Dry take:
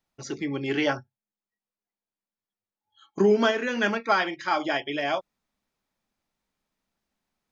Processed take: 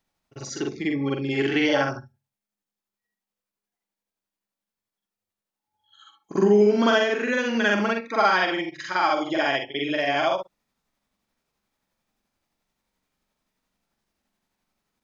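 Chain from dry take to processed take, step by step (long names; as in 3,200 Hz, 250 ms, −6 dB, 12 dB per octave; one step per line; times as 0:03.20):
time stretch by overlap-add 2×, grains 174 ms
in parallel at −2 dB: brickwall limiter −19 dBFS, peak gain reduction 8 dB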